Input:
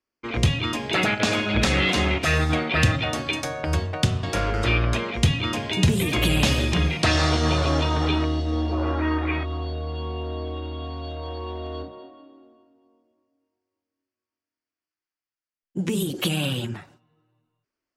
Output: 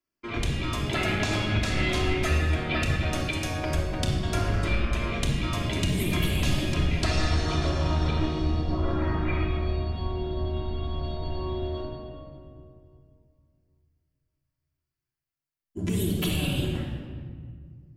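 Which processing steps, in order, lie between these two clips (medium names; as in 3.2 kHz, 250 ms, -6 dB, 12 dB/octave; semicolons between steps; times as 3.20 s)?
octave divider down 1 oct, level -2 dB; treble shelf 9.6 kHz +7.5 dB; de-hum 92.67 Hz, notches 3; compression, threshold -21 dBFS, peak gain reduction 10 dB; simulated room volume 2800 m³, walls mixed, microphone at 3 m; trim -6.5 dB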